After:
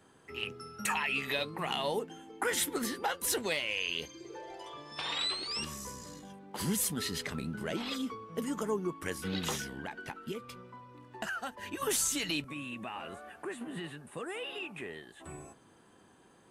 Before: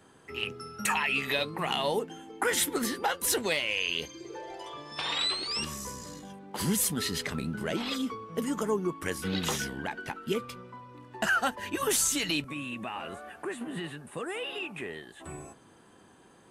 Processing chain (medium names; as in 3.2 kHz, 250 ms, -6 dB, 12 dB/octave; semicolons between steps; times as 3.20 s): 9.58–11.82 s: compression 4:1, threshold -32 dBFS, peak gain reduction 8 dB; trim -4 dB